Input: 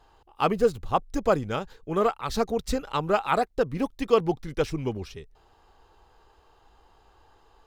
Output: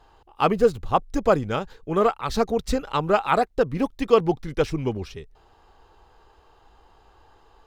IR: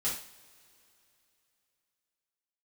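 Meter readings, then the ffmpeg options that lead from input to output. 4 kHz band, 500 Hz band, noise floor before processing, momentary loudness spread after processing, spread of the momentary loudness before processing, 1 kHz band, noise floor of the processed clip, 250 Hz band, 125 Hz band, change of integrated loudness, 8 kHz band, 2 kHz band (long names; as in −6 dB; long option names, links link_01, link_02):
+2.5 dB, +3.5 dB, −61 dBFS, 9 LU, 9 LU, +3.5 dB, −57 dBFS, +3.5 dB, +3.5 dB, +3.5 dB, +1.0 dB, +3.0 dB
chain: -af "highshelf=frequency=5800:gain=-4.5,volume=3.5dB"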